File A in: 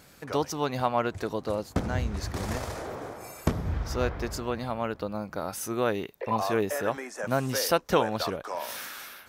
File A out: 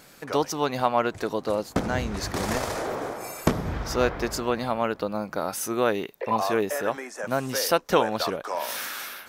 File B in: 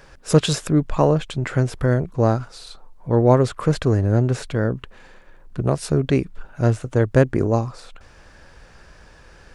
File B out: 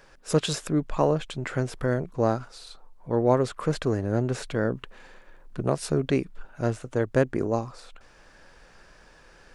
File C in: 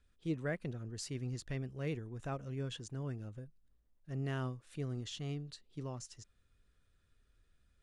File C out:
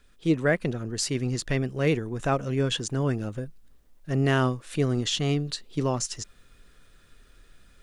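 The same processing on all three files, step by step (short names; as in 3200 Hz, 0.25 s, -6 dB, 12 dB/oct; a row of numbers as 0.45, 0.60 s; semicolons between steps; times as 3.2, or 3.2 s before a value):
bell 73 Hz -10.5 dB 1.7 oct; vocal rider within 5 dB 2 s; match loudness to -27 LUFS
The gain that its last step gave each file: +3.5, -5.0, +17.0 dB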